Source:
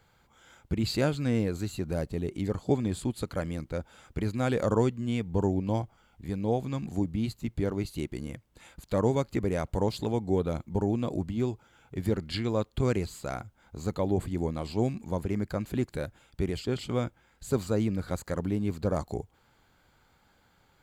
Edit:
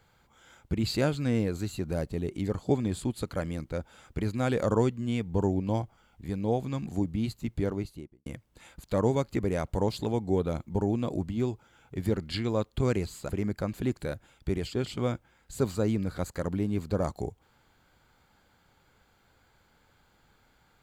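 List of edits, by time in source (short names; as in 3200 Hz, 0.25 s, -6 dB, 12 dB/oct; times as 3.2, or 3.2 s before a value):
7.63–8.26 studio fade out
13.29–15.21 cut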